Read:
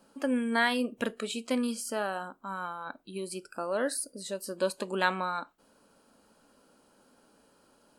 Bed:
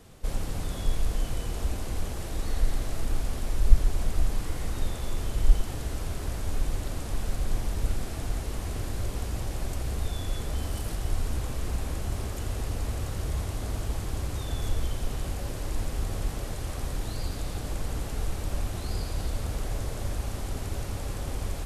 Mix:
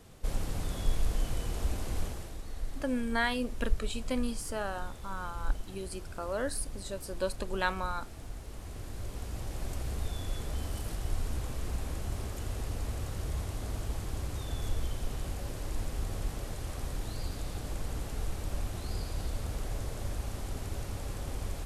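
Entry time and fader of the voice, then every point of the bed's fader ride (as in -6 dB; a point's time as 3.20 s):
2.60 s, -3.5 dB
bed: 2.03 s -2.5 dB
2.42 s -12 dB
8.40 s -12 dB
9.72 s -4.5 dB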